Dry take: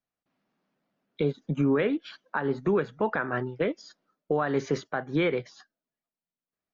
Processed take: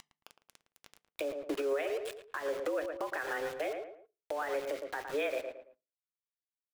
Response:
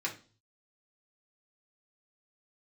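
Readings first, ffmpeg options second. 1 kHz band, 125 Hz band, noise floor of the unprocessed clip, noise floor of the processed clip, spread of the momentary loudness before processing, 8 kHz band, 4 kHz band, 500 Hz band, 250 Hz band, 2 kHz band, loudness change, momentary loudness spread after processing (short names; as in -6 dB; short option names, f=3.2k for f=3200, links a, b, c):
-6.5 dB, under -30 dB, under -85 dBFS, under -85 dBFS, 6 LU, n/a, -4.0 dB, -6.0 dB, -15.5 dB, -5.5 dB, -8.0 dB, 8 LU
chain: -filter_complex "[0:a]aeval=exprs='val(0)+0.5*0.00794*sgn(val(0))':c=same,highpass=f=160:t=q:w=0.5412,highpass=f=160:t=q:w=1.307,lowpass=f=3.2k:t=q:w=0.5176,lowpass=f=3.2k:t=q:w=0.7071,lowpass=f=3.2k:t=q:w=1.932,afreqshift=140,highshelf=f=2.4k:g=6,acompressor=mode=upward:threshold=-39dB:ratio=2.5,aeval=exprs='val(0)*gte(abs(val(0)),0.0188)':c=same,asplit=2[a][b];[b]adelay=111,lowpass=f=2k:p=1,volume=-10dB,asplit=2[c][d];[d]adelay=111,lowpass=f=2k:p=1,volume=0.29,asplit=2[e][f];[f]adelay=111,lowpass=f=2k:p=1,volume=0.29[g];[a][c][e][g]amix=inputs=4:normalize=0,acompressor=threshold=-25dB:ratio=6,alimiter=level_in=1.5dB:limit=-24dB:level=0:latency=1:release=431,volume=-1.5dB,asplit=2[h][i];[1:a]atrim=start_sample=2205,asetrate=61740,aresample=44100[j];[i][j]afir=irnorm=-1:irlink=0,volume=-13.5dB[k];[h][k]amix=inputs=2:normalize=0"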